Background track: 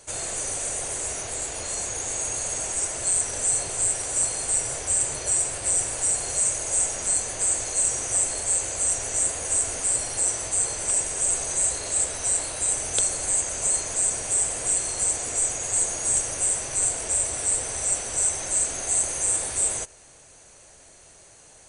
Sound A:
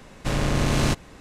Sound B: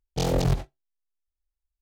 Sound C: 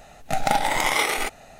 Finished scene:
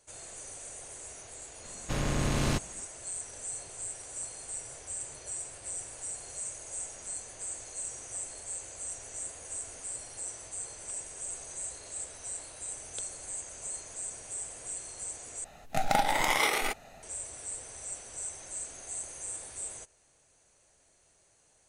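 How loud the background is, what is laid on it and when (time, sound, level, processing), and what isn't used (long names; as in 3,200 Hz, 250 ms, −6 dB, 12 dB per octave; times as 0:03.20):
background track −15.5 dB
0:01.64: mix in A −7 dB
0:15.44: overwrite with C −5 dB
not used: B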